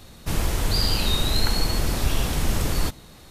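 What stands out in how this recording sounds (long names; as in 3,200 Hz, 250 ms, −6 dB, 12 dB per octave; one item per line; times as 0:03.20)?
background noise floor −47 dBFS
spectral slope −4.0 dB per octave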